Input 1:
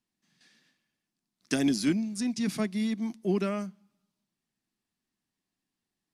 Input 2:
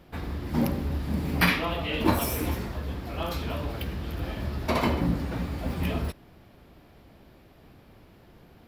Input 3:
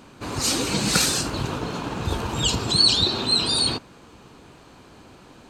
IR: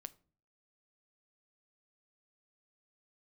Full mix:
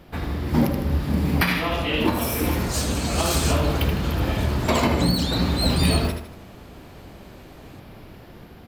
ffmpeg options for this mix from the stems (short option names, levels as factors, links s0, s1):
-filter_complex "[0:a]volume=0.266[s0];[1:a]volume=1.41,asplit=3[s1][s2][s3];[s2]volume=0.708[s4];[s3]volume=0.596[s5];[2:a]aeval=exprs='0.562*(cos(1*acos(clip(val(0)/0.562,-1,1)))-cos(1*PI/2))+0.0891*(cos(5*acos(clip(val(0)/0.562,-1,1)))-cos(5*PI/2))':c=same,highshelf=f=9600:g=11.5,adelay=2300,volume=0.178[s6];[3:a]atrim=start_sample=2205[s7];[s4][s7]afir=irnorm=-1:irlink=0[s8];[s5]aecho=0:1:78|156|234|312|390:1|0.37|0.137|0.0507|0.0187[s9];[s0][s1][s6][s8][s9]amix=inputs=5:normalize=0,dynaudnorm=f=140:g=9:m=1.58,alimiter=limit=0.355:level=0:latency=1:release=350"